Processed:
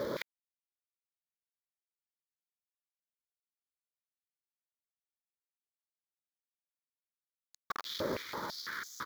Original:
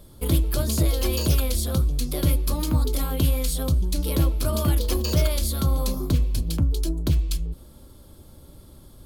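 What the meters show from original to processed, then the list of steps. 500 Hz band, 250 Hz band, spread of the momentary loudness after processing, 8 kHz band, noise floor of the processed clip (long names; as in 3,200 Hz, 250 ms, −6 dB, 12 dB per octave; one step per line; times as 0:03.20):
−14.0 dB, −22.5 dB, 6 LU, −23.5 dB, below −85 dBFS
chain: stylus tracing distortion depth 0.29 ms
full-wave rectification
high-shelf EQ 3,600 Hz −11 dB
on a send: repeating echo 159 ms, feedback 50%, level −8 dB
on the sum: log-companded quantiser 6 bits
spectral tilt −3 dB per octave
phaser with its sweep stopped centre 2,700 Hz, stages 6
in parallel at +0.5 dB: downward compressor 12 to 1, threshold −8 dBFS, peak gain reduction 10 dB
on the sum: hard clipping −10 dBFS, distortion −11 dB
high-pass on a step sequencer 6 Hz 600–6,600 Hz
level +17.5 dB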